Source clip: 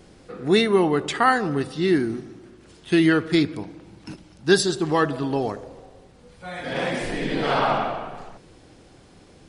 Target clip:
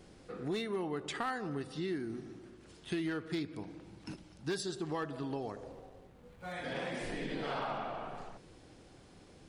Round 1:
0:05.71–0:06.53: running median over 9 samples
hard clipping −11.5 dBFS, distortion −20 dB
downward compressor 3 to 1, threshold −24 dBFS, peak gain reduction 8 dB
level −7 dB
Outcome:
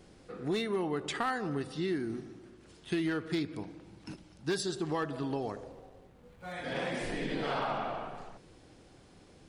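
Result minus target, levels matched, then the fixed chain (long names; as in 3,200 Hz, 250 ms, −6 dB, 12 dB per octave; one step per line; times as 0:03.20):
downward compressor: peak gain reduction −4 dB
0:05.71–0:06.53: running median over 9 samples
hard clipping −11.5 dBFS, distortion −20 dB
downward compressor 3 to 1, threshold −30 dBFS, peak gain reduction 12 dB
level −7 dB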